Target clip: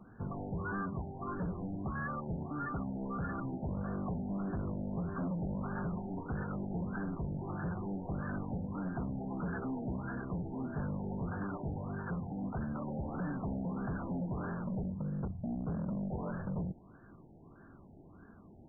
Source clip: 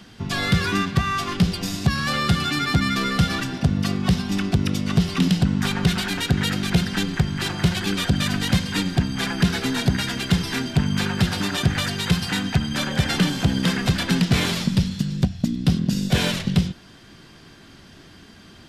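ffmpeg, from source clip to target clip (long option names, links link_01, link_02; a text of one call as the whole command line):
ffmpeg -i in.wav -af "asoftclip=type=hard:threshold=-25.5dB,afftfilt=real='re*lt(b*sr/1024,890*pow(1800/890,0.5+0.5*sin(2*PI*1.6*pts/sr)))':imag='im*lt(b*sr/1024,890*pow(1800/890,0.5+0.5*sin(2*PI*1.6*pts/sr)))':win_size=1024:overlap=0.75,volume=-8dB" out.wav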